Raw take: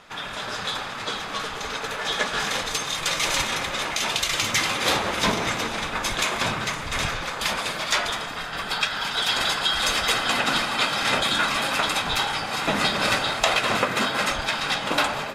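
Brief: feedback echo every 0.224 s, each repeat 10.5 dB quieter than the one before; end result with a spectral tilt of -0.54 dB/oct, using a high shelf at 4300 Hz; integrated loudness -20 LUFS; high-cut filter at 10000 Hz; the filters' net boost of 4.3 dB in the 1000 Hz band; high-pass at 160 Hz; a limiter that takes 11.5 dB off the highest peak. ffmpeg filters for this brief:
-af "highpass=160,lowpass=10k,equalizer=f=1k:t=o:g=5,highshelf=f=4.3k:g=7.5,alimiter=limit=-13.5dB:level=0:latency=1,aecho=1:1:224|448|672:0.299|0.0896|0.0269,volume=2.5dB"

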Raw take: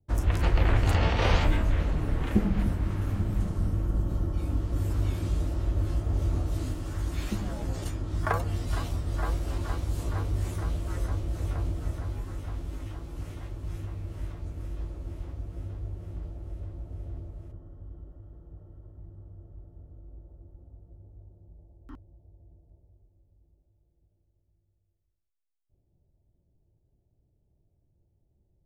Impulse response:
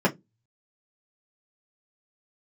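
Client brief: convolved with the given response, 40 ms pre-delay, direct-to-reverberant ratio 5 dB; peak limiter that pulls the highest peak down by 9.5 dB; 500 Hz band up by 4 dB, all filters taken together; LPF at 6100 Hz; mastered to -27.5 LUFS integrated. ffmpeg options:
-filter_complex "[0:a]lowpass=6.1k,equalizer=f=500:t=o:g=5,alimiter=limit=-19dB:level=0:latency=1,asplit=2[a][b];[1:a]atrim=start_sample=2205,adelay=40[c];[b][c]afir=irnorm=-1:irlink=0,volume=-20dB[d];[a][d]amix=inputs=2:normalize=0,volume=3dB"

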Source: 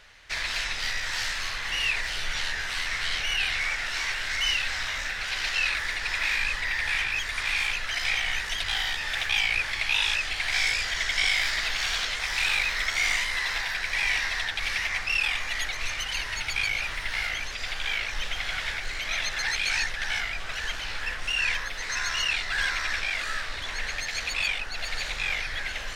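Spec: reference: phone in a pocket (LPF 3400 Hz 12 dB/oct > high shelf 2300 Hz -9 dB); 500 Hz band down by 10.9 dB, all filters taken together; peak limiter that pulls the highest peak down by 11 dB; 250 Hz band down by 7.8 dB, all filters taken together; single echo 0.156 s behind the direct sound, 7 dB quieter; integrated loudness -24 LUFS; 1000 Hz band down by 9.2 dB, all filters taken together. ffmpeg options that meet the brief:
-af "equalizer=f=250:t=o:g=-8.5,equalizer=f=500:t=o:g=-9,equalizer=f=1k:t=o:g=-7.5,alimiter=limit=-23.5dB:level=0:latency=1,lowpass=3.4k,highshelf=f=2.3k:g=-9,aecho=1:1:156:0.447,volume=13dB"

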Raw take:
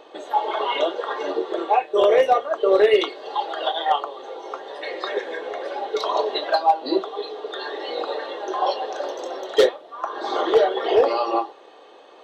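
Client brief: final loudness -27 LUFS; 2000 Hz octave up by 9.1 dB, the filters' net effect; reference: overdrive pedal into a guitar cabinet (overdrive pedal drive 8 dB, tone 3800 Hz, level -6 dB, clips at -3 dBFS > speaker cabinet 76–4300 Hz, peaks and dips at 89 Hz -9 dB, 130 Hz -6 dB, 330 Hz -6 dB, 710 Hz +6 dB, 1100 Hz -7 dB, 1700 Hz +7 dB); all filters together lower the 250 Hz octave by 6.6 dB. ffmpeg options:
-filter_complex "[0:a]equalizer=f=250:t=o:g=-6,equalizer=f=2k:t=o:g=6.5,asplit=2[a][b];[b]highpass=f=720:p=1,volume=8dB,asoftclip=type=tanh:threshold=-3dB[c];[a][c]amix=inputs=2:normalize=0,lowpass=f=3.8k:p=1,volume=-6dB,highpass=76,equalizer=f=89:t=q:w=4:g=-9,equalizer=f=130:t=q:w=4:g=-6,equalizer=f=330:t=q:w=4:g=-6,equalizer=f=710:t=q:w=4:g=6,equalizer=f=1.1k:t=q:w=4:g=-7,equalizer=f=1.7k:t=q:w=4:g=7,lowpass=f=4.3k:w=0.5412,lowpass=f=4.3k:w=1.3066,volume=-7.5dB"

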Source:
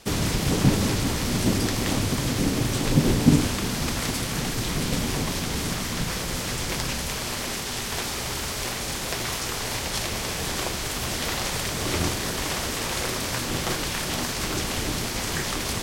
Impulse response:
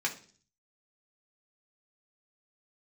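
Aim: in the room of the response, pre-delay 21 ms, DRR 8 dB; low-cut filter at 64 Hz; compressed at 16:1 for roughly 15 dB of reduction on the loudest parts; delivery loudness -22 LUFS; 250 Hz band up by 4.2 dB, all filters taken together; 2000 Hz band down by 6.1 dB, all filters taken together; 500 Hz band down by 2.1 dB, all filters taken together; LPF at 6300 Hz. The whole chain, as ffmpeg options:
-filter_complex "[0:a]highpass=64,lowpass=6.3k,equalizer=f=250:t=o:g=6.5,equalizer=f=500:t=o:g=-5,equalizer=f=2k:t=o:g=-7.5,acompressor=threshold=-23dB:ratio=16,asplit=2[a][b];[1:a]atrim=start_sample=2205,adelay=21[c];[b][c]afir=irnorm=-1:irlink=0,volume=-14.5dB[d];[a][d]amix=inputs=2:normalize=0,volume=7dB"

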